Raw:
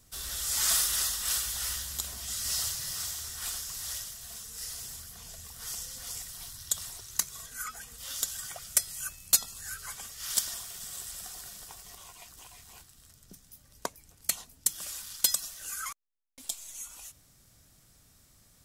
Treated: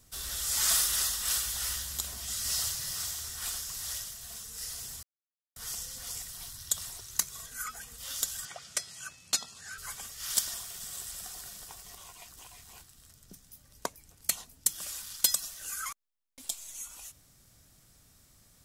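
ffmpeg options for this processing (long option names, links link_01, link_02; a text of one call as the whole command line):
ffmpeg -i in.wav -filter_complex "[0:a]asettb=1/sr,asplit=3[link_01][link_02][link_03];[link_01]atrim=end=8.454[link_04];[link_02]atrim=start=8.45:end=9.78,asetpts=PTS-STARTPTS,afade=type=in:duration=0.004:curve=qsin,afade=type=out:start_time=1.326:duration=0.004:curve=qsin,highpass=130,lowpass=5900[link_05];[link_03]atrim=start=9.776[link_06];[link_04][link_05]acrossfade=duration=0.004:curve1=hsin:curve2=qsin[link_07];[link_07][link_06]acrossfade=duration=0.004:curve1=qsin:curve2=hsin,asplit=3[link_08][link_09][link_10];[link_08]atrim=end=5.03,asetpts=PTS-STARTPTS,afade=type=out:start_time=5.026:duration=0.004:curve=hsin[link_11];[link_09]atrim=start=5.03:end=5.56,asetpts=PTS-STARTPTS,volume=0[link_12];[link_10]atrim=start=5.56,asetpts=PTS-STARTPTS,afade=type=in:duration=0.004:curve=hsin[link_13];[link_11][link_12][link_13]concat=n=3:v=0:a=1" out.wav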